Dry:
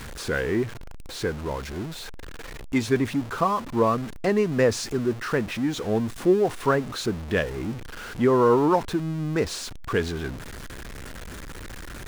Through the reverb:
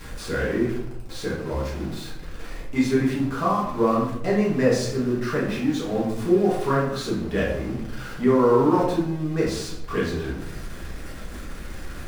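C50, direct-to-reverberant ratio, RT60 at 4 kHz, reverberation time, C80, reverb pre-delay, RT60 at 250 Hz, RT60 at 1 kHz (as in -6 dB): 3.0 dB, -6.5 dB, 0.50 s, 0.80 s, 6.5 dB, 5 ms, 1.0 s, 0.70 s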